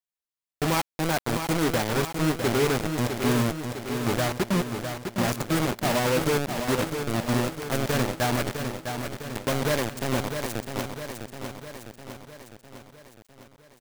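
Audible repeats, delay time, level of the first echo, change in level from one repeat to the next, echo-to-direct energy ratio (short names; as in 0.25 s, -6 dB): 6, 0.655 s, -7.0 dB, -4.5 dB, -5.0 dB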